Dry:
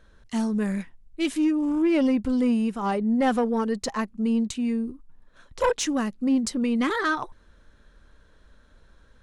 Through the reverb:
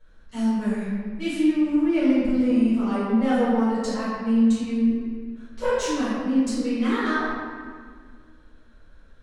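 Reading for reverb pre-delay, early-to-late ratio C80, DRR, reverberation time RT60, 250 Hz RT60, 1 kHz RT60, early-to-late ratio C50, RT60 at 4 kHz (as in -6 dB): 4 ms, 0.0 dB, -13.5 dB, 1.8 s, 2.4 s, 1.7 s, -2.5 dB, 1.2 s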